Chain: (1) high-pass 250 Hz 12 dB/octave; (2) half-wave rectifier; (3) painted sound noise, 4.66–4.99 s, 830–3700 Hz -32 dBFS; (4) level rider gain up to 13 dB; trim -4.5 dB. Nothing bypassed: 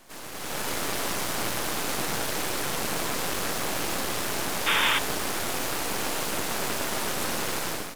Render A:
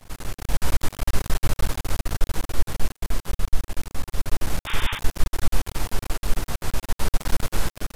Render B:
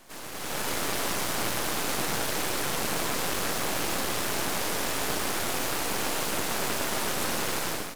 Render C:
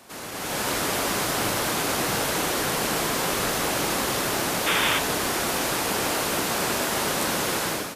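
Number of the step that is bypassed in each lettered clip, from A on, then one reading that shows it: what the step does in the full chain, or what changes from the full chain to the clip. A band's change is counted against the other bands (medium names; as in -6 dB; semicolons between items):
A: 1, 125 Hz band +16.0 dB; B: 3, 2 kHz band -2.0 dB; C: 2, 4 kHz band -1.5 dB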